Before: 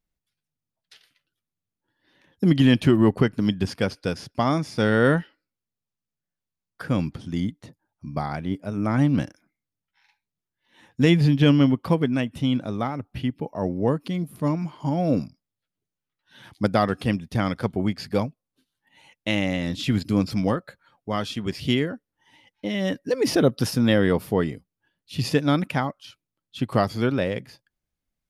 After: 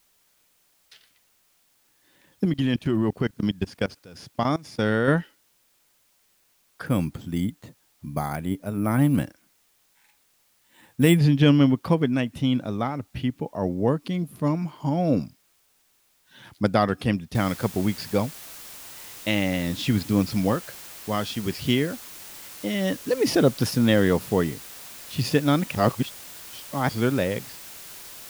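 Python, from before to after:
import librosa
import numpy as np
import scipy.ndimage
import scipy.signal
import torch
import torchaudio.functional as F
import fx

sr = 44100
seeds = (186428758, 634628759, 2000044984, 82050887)

y = fx.level_steps(x, sr, step_db=22, at=(2.45, 5.08))
y = fx.resample_bad(y, sr, factor=4, down='filtered', up='hold', at=(6.86, 11.19))
y = fx.noise_floor_step(y, sr, seeds[0], at_s=17.35, before_db=-65, after_db=-42, tilt_db=0.0)
y = fx.edit(y, sr, fx.reverse_span(start_s=25.75, length_s=1.14), tone=tone)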